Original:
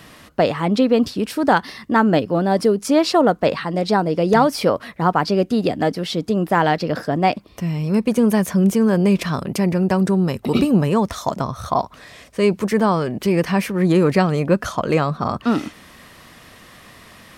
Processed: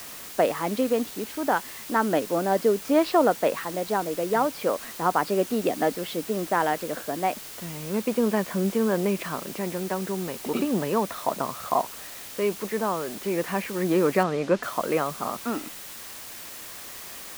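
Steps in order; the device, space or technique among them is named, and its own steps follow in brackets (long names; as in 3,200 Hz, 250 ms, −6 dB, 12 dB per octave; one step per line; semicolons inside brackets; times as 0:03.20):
shortwave radio (band-pass filter 280–2,700 Hz; amplitude tremolo 0.35 Hz, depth 40%; white noise bed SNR 14 dB)
0:14.23–0:14.63: low-pass filter 5,400 Hz 12 dB per octave
level −3.5 dB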